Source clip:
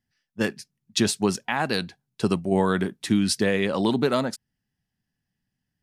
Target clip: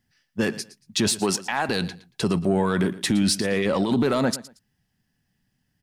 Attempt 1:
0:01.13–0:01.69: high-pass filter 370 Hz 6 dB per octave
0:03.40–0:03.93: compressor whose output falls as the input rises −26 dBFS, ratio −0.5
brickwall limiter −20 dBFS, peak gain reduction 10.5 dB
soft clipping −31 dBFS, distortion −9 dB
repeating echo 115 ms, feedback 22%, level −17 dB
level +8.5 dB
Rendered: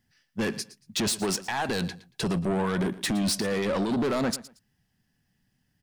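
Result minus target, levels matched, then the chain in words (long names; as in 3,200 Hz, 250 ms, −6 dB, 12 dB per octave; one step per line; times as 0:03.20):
soft clipping: distortion +15 dB
0:01.13–0:01.69: high-pass filter 370 Hz 6 dB per octave
0:03.40–0:03.93: compressor whose output falls as the input rises −26 dBFS, ratio −0.5
brickwall limiter −20 dBFS, peak gain reduction 10.5 dB
soft clipping −19 dBFS, distortion −24 dB
repeating echo 115 ms, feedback 22%, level −17 dB
level +8.5 dB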